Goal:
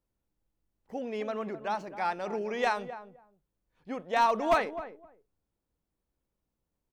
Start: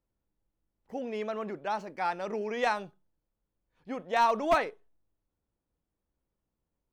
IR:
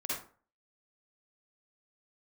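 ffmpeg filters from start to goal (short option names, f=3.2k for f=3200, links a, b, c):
-filter_complex "[0:a]asplit=2[a][b];[b]adelay=259,lowpass=f=820:p=1,volume=-10.5dB,asplit=2[c][d];[d]adelay=259,lowpass=f=820:p=1,volume=0.18[e];[a][c][e]amix=inputs=3:normalize=0"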